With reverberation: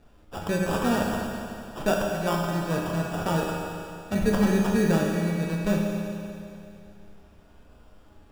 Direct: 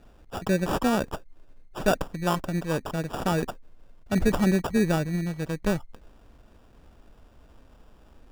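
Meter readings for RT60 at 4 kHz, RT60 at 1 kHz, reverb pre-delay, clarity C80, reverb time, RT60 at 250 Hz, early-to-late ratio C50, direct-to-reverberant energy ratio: 2.6 s, 2.6 s, 10 ms, 1.5 dB, 2.6 s, 2.6 s, 0.0 dB, −2.0 dB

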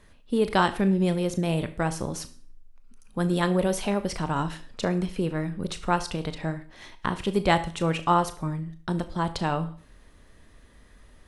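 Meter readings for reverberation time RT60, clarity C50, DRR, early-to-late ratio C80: 0.45 s, 15.0 dB, 10.5 dB, 20.0 dB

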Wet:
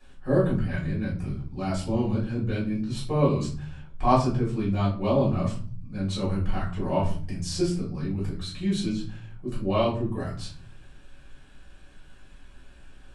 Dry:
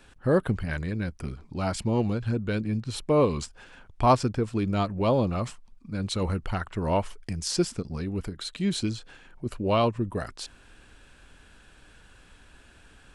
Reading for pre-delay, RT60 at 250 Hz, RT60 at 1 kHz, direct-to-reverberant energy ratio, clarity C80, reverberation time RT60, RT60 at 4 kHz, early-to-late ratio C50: 3 ms, 0.85 s, 0.40 s, −8.5 dB, 12.5 dB, 0.45 s, 0.30 s, 7.0 dB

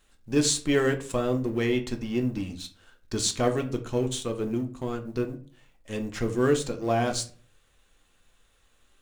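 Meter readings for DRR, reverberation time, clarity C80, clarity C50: 5.0 dB, 0.45 s, 18.5 dB, 13.5 dB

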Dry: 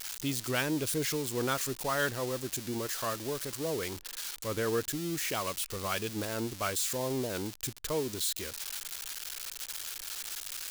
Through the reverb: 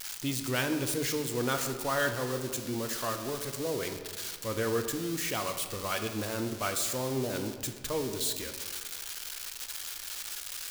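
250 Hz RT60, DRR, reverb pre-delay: 1.9 s, 5.5 dB, 3 ms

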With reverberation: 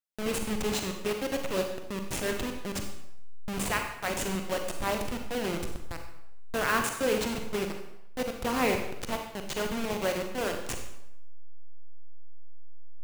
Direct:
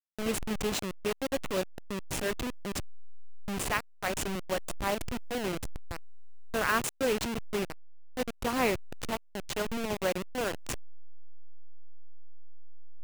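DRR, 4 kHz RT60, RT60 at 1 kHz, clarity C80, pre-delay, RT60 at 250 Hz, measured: 4.0 dB, 0.70 s, 0.80 s, 8.0 dB, 36 ms, 0.75 s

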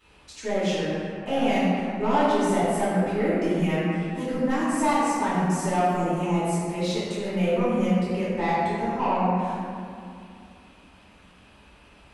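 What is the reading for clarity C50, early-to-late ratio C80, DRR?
−3.0 dB, −1.0 dB, −12.0 dB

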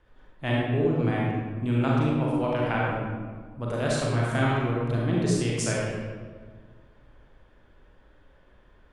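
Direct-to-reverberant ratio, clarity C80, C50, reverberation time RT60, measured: −5.0 dB, 0.0 dB, −2.5 dB, 1.6 s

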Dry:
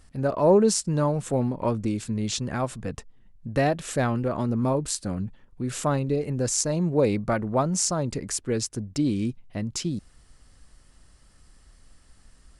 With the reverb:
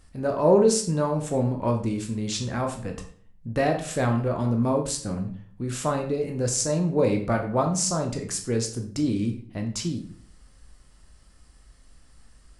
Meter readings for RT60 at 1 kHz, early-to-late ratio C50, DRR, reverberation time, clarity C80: 0.50 s, 9.0 dB, 3.0 dB, 0.50 s, 13.0 dB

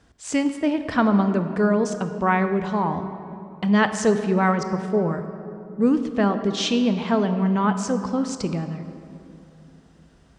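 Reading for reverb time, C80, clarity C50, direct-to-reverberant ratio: 2.8 s, 10.0 dB, 9.0 dB, 8.5 dB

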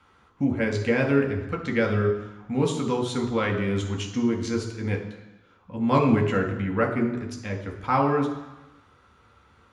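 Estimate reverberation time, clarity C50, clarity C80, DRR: 1.0 s, 7.5 dB, 10.0 dB, 1.0 dB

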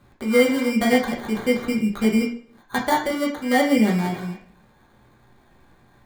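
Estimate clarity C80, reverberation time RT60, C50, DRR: 12.0 dB, 0.50 s, 8.0 dB, −2.5 dB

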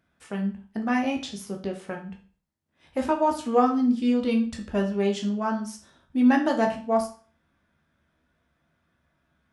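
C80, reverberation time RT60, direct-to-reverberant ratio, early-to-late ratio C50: 15.0 dB, 0.40 s, 2.0 dB, 10.0 dB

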